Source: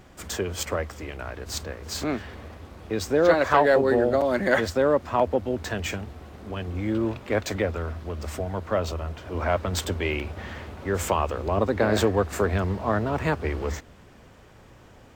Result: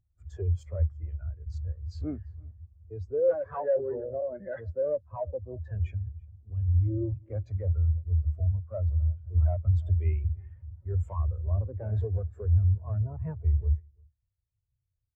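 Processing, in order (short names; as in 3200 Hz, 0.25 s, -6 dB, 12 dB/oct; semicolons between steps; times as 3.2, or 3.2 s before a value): EQ curve 110 Hz 0 dB, 200 Hz -10 dB, 1000 Hz -6 dB; in parallel at +1 dB: vocal rider 2 s; on the sum: tube stage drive 21 dB, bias 0.25; echo 0.342 s -12.5 dB; spectral expander 2.5:1; gain +2.5 dB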